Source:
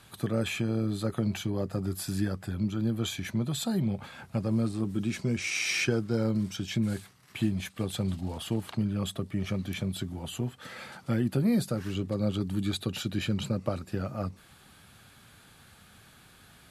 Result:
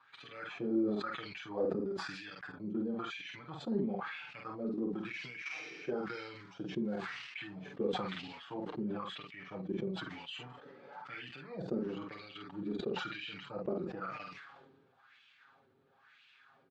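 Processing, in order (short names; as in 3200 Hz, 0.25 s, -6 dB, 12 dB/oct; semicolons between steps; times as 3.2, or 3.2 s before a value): LPF 6200 Hz 24 dB/oct; bell 620 Hz -7 dB 0.28 oct; level quantiser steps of 16 dB; wah 1 Hz 360–2800 Hz, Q 3.3; envelope flanger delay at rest 7.5 ms, full sweep at -23 dBFS; doubler 48 ms -6 dB; sustainer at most 37 dB/s; gain +10.5 dB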